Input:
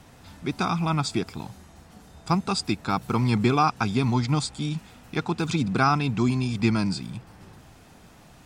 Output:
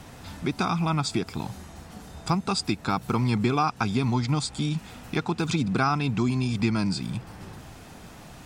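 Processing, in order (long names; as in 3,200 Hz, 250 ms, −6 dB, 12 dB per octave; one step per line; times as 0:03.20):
downward compressor 2 to 1, threshold −33 dBFS, peak gain reduction 9.5 dB
level +6 dB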